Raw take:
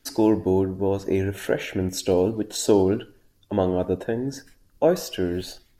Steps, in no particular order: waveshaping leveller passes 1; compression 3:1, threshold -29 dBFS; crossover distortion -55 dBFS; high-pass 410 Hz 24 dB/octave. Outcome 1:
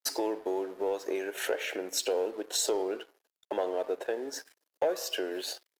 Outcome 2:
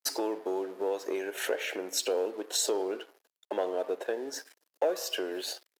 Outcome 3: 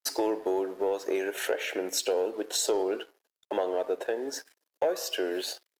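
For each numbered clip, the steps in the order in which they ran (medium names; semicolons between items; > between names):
compression > crossover distortion > high-pass > waveshaping leveller; compression > waveshaping leveller > crossover distortion > high-pass; crossover distortion > high-pass > compression > waveshaping leveller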